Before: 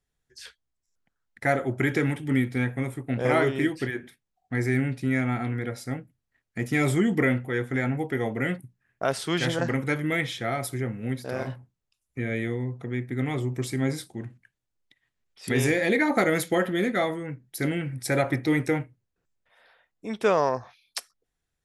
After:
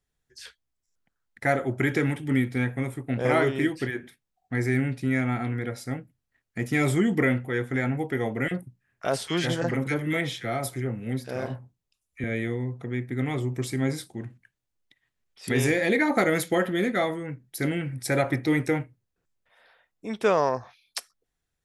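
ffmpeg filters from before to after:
-filter_complex "[0:a]asettb=1/sr,asplit=3[s0][s1][s2];[s0]atrim=end=8.484[s3];[s1]atrim=start=8.48:end=12.24,asetpts=PTS-STARTPTS,afade=t=in:d=0.004:c=qsin,afade=t=out:st=3.756:d=0.004:c=qsin,acrossover=split=1500[s4][s5];[s4]adelay=30[s6];[s6][s5]amix=inputs=2:normalize=0,atrim=end_sample=165816[s7];[s2]atrim=start=12.236[s8];[s3][s7]acrossfade=d=0.004:c1=hsin:c2=qsin[s9];[s9][s8]acrossfade=d=0.004:c1=qsin:c2=hsin"

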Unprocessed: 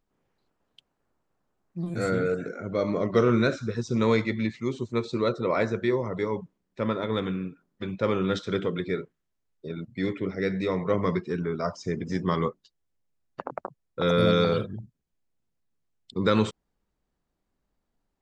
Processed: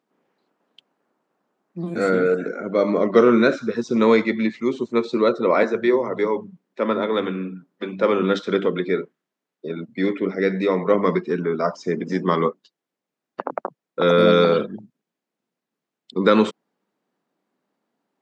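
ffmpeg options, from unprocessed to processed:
-filter_complex "[0:a]asettb=1/sr,asplit=3[s0][s1][s2];[s0]atrim=end=5.634[s3];[s1]atrim=start=5.63:end=8.22,asetpts=PTS-STARTPTS,afade=t=in:d=0.004:c=qsin,afade=t=out:st=2.586:d=0.004:c=qsin,acrossover=split=190[s4][s5];[s4]adelay=100[s6];[s6][s5]amix=inputs=2:normalize=0,atrim=end_sample=114219[s7];[s2]atrim=start=8.216[s8];[s3][s7]acrossfade=d=0.004:c1=hsin:c2=qsin[s9];[s9][s8]acrossfade=d=0.004:c1=qsin:c2=hsin,highpass=f=200:w=0.5412,highpass=f=200:w=1.3066,highshelf=f=4900:g=-11,volume=2.51"

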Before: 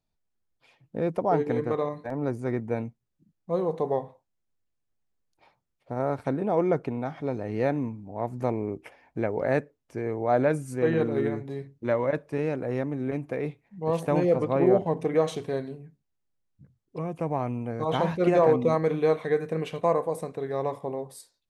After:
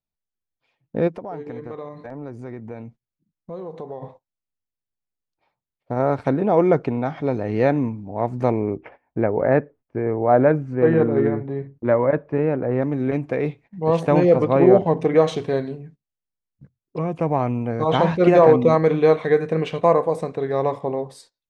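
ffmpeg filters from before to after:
-filter_complex "[0:a]asplit=3[s0][s1][s2];[s0]afade=t=out:st=1.07:d=0.02[s3];[s1]acompressor=threshold=0.00794:ratio=3:attack=3.2:release=140:knee=1:detection=peak,afade=t=in:st=1.07:d=0.02,afade=t=out:st=4.01:d=0.02[s4];[s2]afade=t=in:st=4.01:d=0.02[s5];[s3][s4][s5]amix=inputs=3:normalize=0,asplit=3[s6][s7][s8];[s6]afade=t=out:st=8.76:d=0.02[s9];[s7]lowpass=1700,afade=t=in:st=8.76:d=0.02,afade=t=out:st=12.81:d=0.02[s10];[s8]afade=t=in:st=12.81:d=0.02[s11];[s9][s10][s11]amix=inputs=3:normalize=0,agate=range=0.141:threshold=0.00251:ratio=16:detection=peak,lowpass=5600,volume=2.37"

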